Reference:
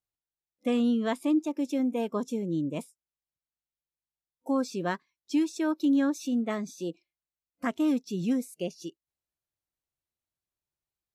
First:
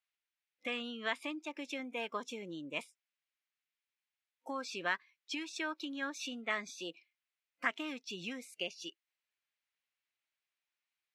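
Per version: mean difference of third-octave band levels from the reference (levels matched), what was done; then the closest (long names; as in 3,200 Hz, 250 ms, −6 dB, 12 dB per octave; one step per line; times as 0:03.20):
5.5 dB: downward compressor, threshold −29 dBFS, peak gain reduction 8.5 dB
resonant band-pass 2,300 Hz, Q 1.7
level +10.5 dB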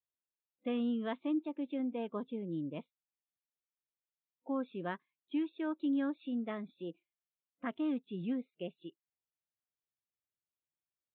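3.0 dB: high-pass filter 82 Hz
downsampling to 8,000 Hz
level −8.5 dB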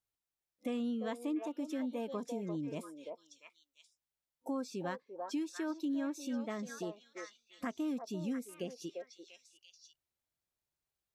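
4.5 dB: on a send: echo through a band-pass that steps 344 ms, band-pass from 660 Hz, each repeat 1.4 octaves, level −3 dB
on the sum: downward compressor 2 to 1, threshold −43 dBFS, peak gain reduction 12 dB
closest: second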